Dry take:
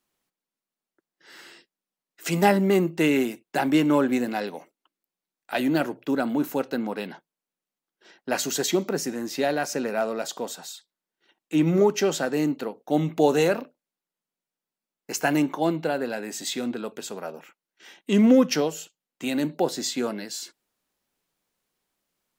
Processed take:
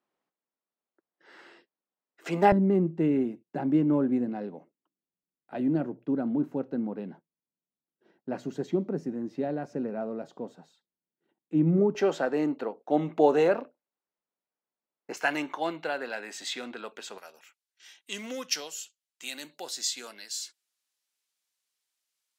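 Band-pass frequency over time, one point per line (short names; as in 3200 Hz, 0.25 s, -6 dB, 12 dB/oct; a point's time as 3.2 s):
band-pass, Q 0.59
640 Hz
from 2.52 s 140 Hz
from 11.95 s 700 Hz
from 15.17 s 1900 Hz
from 17.18 s 6300 Hz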